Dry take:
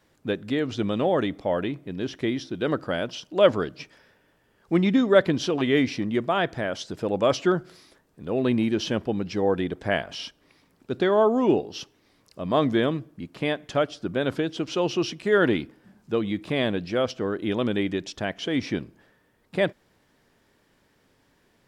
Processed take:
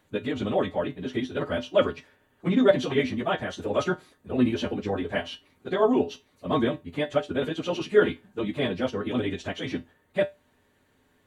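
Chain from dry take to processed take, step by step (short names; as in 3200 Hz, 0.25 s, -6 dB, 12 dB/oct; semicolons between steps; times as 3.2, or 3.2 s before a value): bell 5200 Hz -14.5 dB 0.21 oct; plain phase-vocoder stretch 0.52×; resonator 84 Hz, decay 0.2 s, harmonics odd, mix 70%; gain +8.5 dB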